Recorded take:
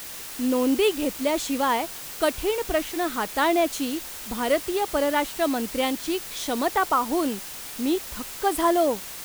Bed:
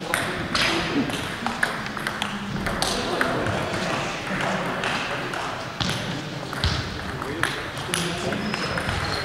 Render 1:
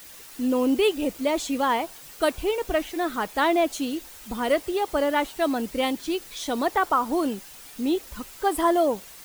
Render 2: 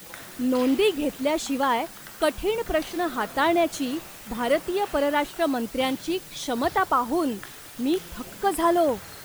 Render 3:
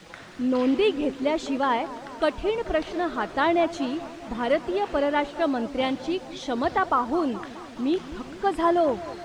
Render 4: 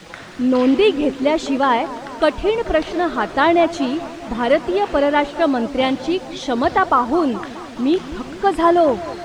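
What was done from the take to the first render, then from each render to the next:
broadband denoise 9 dB, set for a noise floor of −38 dBFS
mix in bed −18.5 dB
high-frequency loss of the air 120 metres; bucket-brigade delay 212 ms, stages 2,048, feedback 70%, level −16 dB
level +7.5 dB

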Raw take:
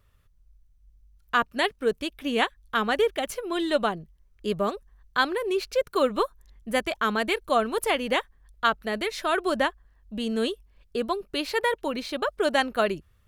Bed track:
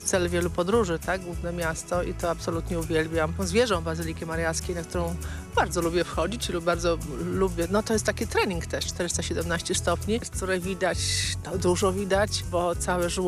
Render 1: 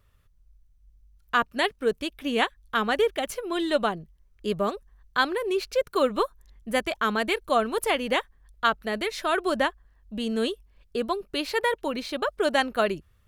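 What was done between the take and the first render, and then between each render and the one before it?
no processing that can be heard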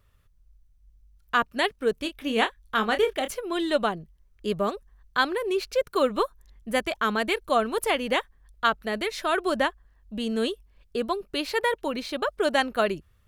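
0:01.94–0:03.32: double-tracking delay 27 ms −9 dB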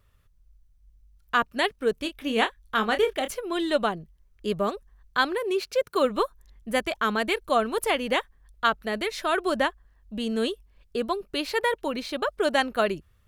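0:05.39–0:06.05: high-pass filter 82 Hz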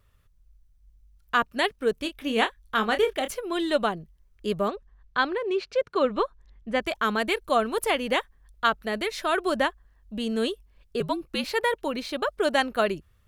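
0:04.68–0:06.82: high-frequency loss of the air 130 metres
0:11.00–0:11.44: frequency shifter −64 Hz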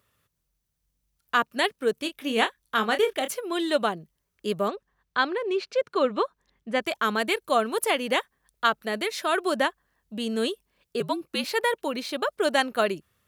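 high-pass filter 160 Hz 12 dB per octave
high-shelf EQ 5,700 Hz +5 dB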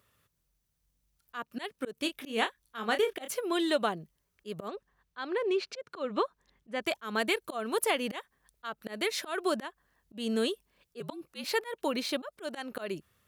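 downward compressor 2 to 1, threshold −27 dBFS, peak gain reduction 6.5 dB
volume swells 178 ms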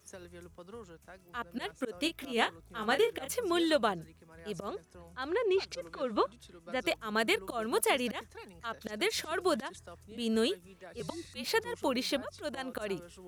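mix in bed track −25 dB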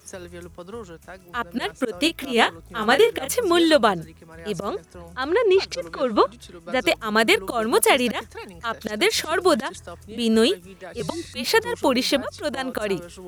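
level +11.5 dB
brickwall limiter −2 dBFS, peak gain reduction 1 dB

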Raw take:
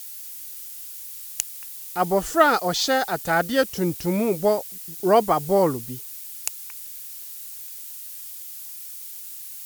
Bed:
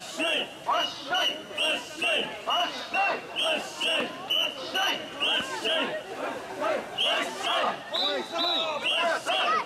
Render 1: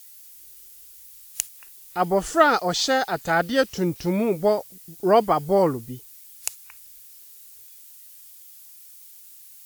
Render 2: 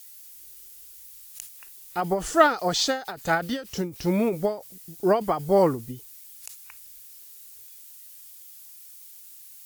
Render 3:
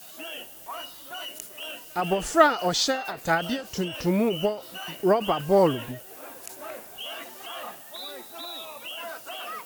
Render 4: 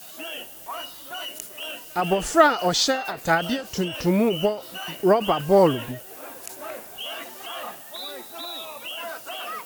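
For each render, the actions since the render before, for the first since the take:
noise reduction from a noise print 9 dB
every ending faded ahead of time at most 150 dB per second
mix in bed −11.5 dB
level +3 dB; brickwall limiter −3 dBFS, peak gain reduction 2.5 dB

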